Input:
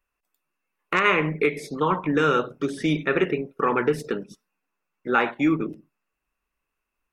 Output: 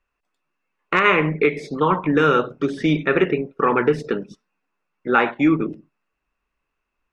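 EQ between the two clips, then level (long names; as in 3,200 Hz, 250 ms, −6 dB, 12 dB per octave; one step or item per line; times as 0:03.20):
high-frequency loss of the air 100 metres
+4.5 dB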